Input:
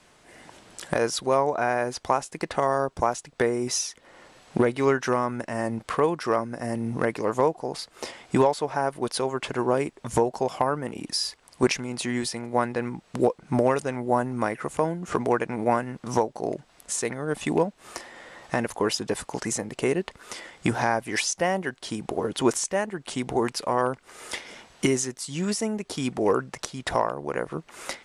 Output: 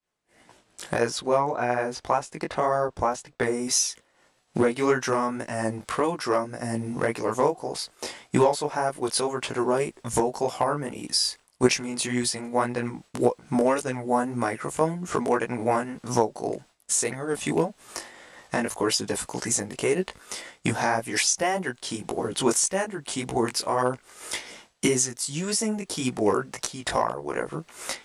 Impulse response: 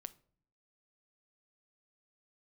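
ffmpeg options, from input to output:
-af "flanger=delay=16:depth=4.9:speed=1.8,agate=range=-33dB:threshold=-44dB:ratio=3:detection=peak,asetnsamples=nb_out_samples=441:pad=0,asendcmd='1.1 highshelf g -3;3.43 highshelf g 9',highshelf=frequency=5400:gain=3,volume=2.5dB"

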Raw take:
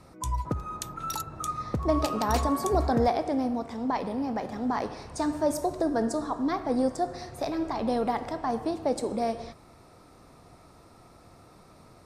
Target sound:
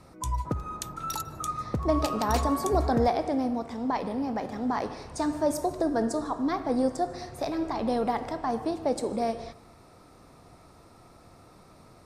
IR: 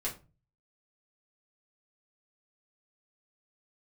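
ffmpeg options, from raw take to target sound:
-filter_complex "[0:a]asplit=2[link_01][link_02];[1:a]atrim=start_sample=2205,adelay=148[link_03];[link_02][link_03]afir=irnorm=-1:irlink=0,volume=-23dB[link_04];[link_01][link_04]amix=inputs=2:normalize=0"

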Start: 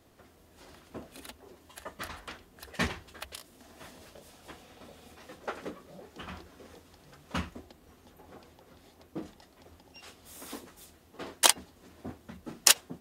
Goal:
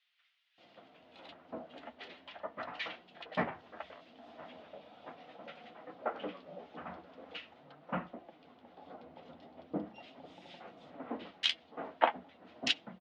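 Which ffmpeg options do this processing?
ffmpeg -i in.wav -filter_complex "[0:a]highpass=250,equalizer=frequency=380:width_type=q:width=4:gain=-10,equalizer=frequency=690:width_type=q:width=4:gain=4,equalizer=frequency=1100:width_type=q:width=4:gain=-4,equalizer=frequency=1700:width_type=q:width=4:gain=-5,equalizer=frequency=2500:width_type=q:width=4:gain=-3,lowpass=frequency=3100:width=0.5412,lowpass=frequency=3100:width=1.3066,flanger=delay=5.5:depth=7.5:regen=-36:speed=0.4:shape=sinusoidal,asettb=1/sr,asplit=3[link_01][link_02][link_03];[link_01]atrim=end=8.434[link_04];[link_02]atrim=start=8.43:end=10.73,asetpts=PTS-STARTPTS,afade=type=in:duration=0.004:curve=qsin,afade=type=out:start_time=2.296:duration=0.004:curve=qsin,lowshelf=frequency=500:gain=7[link_05];[link_03]atrim=start=10.726[link_06];[link_04][link_05]acrossfade=duration=0.004:curve1=hsin:curve2=qsin[link_07];[link_07][link_06]acrossfade=duration=0.004:curve1=qsin:curve2=hsin,acrossover=split=2100[link_08][link_09];[link_08]adelay=580[link_10];[link_10][link_09]amix=inputs=2:normalize=0,volume=6.5dB" out.wav

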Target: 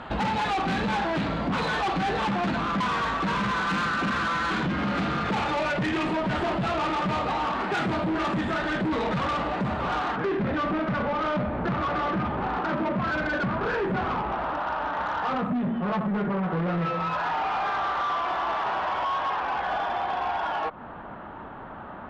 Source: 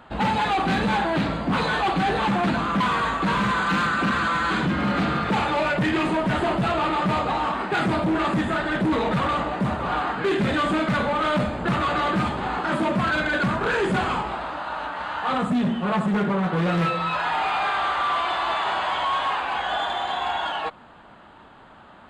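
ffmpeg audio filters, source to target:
ffmpeg -i in.wav -af "asetnsamples=nb_out_samples=441:pad=0,asendcmd='10.16 lowpass f 1600',lowpass=5300,acompressor=threshold=-33dB:ratio=4,aeval=exprs='0.0596*(cos(1*acos(clip(val(0)/0.0596,-1,1)))-cos(1*PI/2))+0.00596*(cos(5*acos(clip(val(0)/0.0596,-1,1)))-cos(5*PI/2))':channel_layout=same,volume=5.5dB" out.wav

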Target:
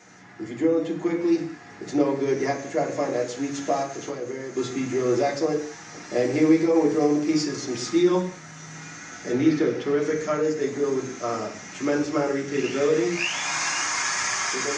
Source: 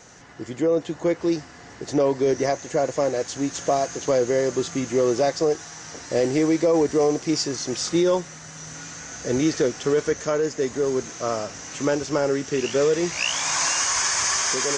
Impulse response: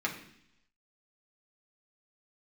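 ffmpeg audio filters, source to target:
-filter_complex "[0:a]asettb=1/sr,asplit=3[link_01][link_02][link_03];[link_01]atrim=end=3.824[link_04];[link_02]atrim=start=3.82:end=4.57,asetpts=PTS-STARTPTS,afade=type=in:duration=0.004:curve=qsin,afade=type=out:start_time=0.746:duration=0.004:curve=qsin,acompressor=threshold=-26dB:ratio=6[link_05];[link_03]atrim=start=4.566[link_06];[link_04][link_05]acrossfade=duration=0.004:curve1=hsin:curve2=qsin[link_07];[link_07][link_06]acrossfade=duration=0.004:curve1=qsin:curve2=hsin,asettb=1/sr,asplit=3[link_08][link_09][link_10];[link_08]atrim=end=9.324[link_11];[link_09]atrim=start=9.32:end=10.02,asetpts=PTS-STARTPTS,afade=type=in:duration=0.004:curve=qsin,afade=type=out:start_time=0.696:duration=0.004:curve=qsin,equalizer=frequency=7800:width=1.3:gain=-11.5[link_12];[link_10]atrim=start=10.016[link_13];[link_11][link_12]acrossfade=duration=0.004:curve1=hsin:curve2=qsin[link_14];[link_14][link_13]acrossfade=duration=0.004:curve1=qsin:curve2=hsin[link_15];[1:a]atrim=start_sample=2205,afade=type=out:start_time=0.26:duration=0.01,atrim=end_sample=11907[link_16];[link_15][link_16]afir=irnorm=-1:irlink=0,volume=-6.5dB"

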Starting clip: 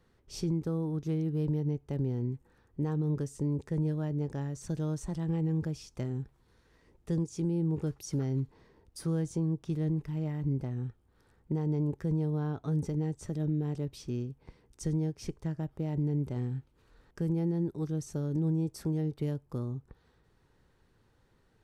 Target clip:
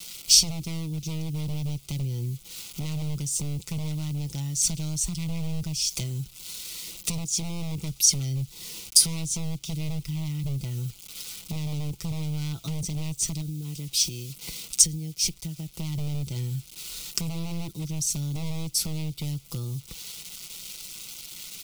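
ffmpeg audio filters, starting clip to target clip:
ffmpeg -i in.wav -filter_complex "[0:a]asplit=3[link_01][link_02][link_03];[link_01]afade=type=out:start_time=13.4:duration=0.02[link_04];[link_02]acompressor=threshold=-47dB:ratio=1.5,afade=type=in:start_time=13.4:duration=0.02,afade=type=out:start_time=15.74:duration=0.02[link_05];[link_03]afade=type=in:start_time=15.74:duration=0.02[link_06];[link_04][link_05][link_06]amix=inputs=3:normalize=0,acrusher=bits=10:mix=0:aa=0.000001,equalizer=frequency=1500:width=2.6:gain=9.5,aecho=1:1:6:0.53,aeval=exprs='0.0501*(abs(mod(val(0)/0.0501+3,4)-2)-1)':channel_layout=same,asuperstop=centerf=1700:order=4:qfactor=4.1,equalizer=frequency=200:width=2.3:gain=6.5,acrossover=split=120[link_07][link_08];[link_08]acompressor=threshold=-46dB:ratio=8[link_09];[link_07][link_09]amix=inputs=2:normalize=0,aexciter=amount=12.5:drive=6.6:freq=2400,volume=7dB" out.wav

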